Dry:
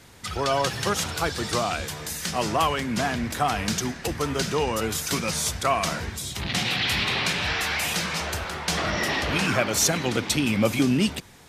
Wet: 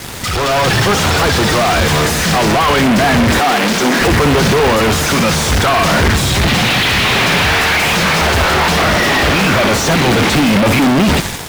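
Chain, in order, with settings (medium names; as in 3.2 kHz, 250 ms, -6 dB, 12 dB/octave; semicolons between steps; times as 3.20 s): fuzz box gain 46 dB, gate -52 dBFS; bit crusher 5-bit; flutter echo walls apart 10.6 m, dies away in 0.23 s; level rider; 3.39–4.01 s: high-pass 200 Hz 24 dB/octave; slew-rate limiter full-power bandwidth 1.2 kHz; trim -4 dB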